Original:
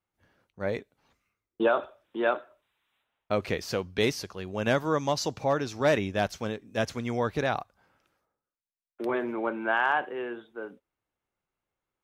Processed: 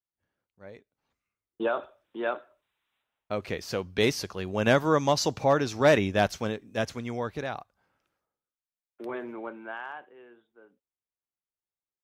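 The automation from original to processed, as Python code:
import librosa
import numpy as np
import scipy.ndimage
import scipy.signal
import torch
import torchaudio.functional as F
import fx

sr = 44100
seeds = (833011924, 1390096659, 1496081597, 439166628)

y = fx.gain(x, sr, db=fx.line((0.78, -16.0), (1.66, -4.0), (3.41, -4.0), (4.27, 3.5), (6.27, 3.5), (7.54, -6.5), (9.36, -6.5), (10.09, -17.5)))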